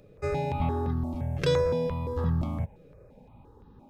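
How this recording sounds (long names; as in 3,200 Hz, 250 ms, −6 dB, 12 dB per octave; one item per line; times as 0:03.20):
notches that jump at a steady rate 5.8 Hz 240–2,300 Hz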